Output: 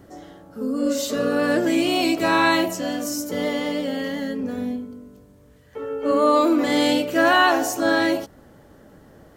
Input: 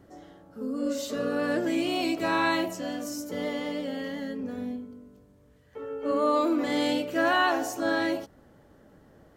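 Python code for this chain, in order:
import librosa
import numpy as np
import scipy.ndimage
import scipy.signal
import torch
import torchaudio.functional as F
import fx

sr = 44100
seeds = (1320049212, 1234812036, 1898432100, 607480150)

y = fx.high_shelf(x, sr, hz=5800.0, db=4.5)
y = F.gain(torch.from_numpy(y), 7.0).numpy()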